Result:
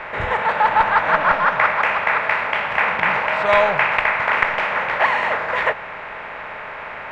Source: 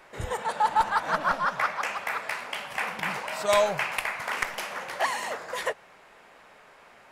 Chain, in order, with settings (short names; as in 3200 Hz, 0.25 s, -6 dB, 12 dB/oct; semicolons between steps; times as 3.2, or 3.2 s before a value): per-bin compression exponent 0.6; synth low-pass 2200 Hz, resonance Q 1.9; gain +3.5 dB